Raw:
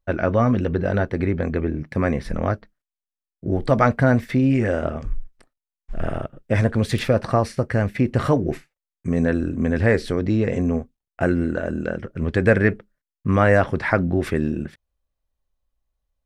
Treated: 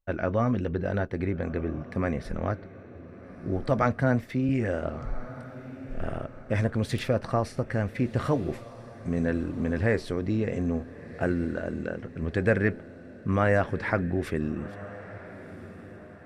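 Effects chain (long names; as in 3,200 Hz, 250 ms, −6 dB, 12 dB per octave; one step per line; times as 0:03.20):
feedback delay with all-pass diffusion 1,376 ms, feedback 45%, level −16 dB
0:03.82–0:04.49: multiband upward and downward expander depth 40%
level −7 dB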